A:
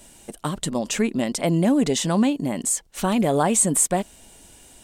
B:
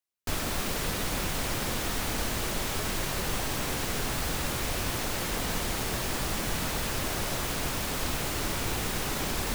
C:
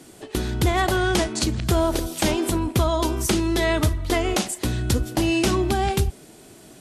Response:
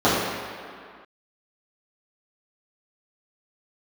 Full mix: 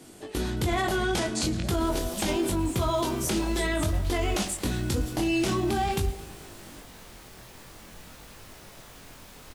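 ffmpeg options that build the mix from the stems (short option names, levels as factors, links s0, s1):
-filter_complex "[0:a]volume=0.15[s0];[1:a]adelay=1450,volume=0.211[s1];[2:a]volume=1.06,asplit=2[s2][s3];[s3]volume=0.106,aecho=0:1:110|220|330|440|550|660|770|880|990:1|0.59|0.348|0.205|0.121|0.0715|0.0422|0.0249|0.0147[s4];[s0][s1][s2][s4]amix=inputs=4:normalize=0,flanger=delay=20:depth=3.8:speed=0.47,alimiter=limit=0.126:level=0:latency=1:release=29"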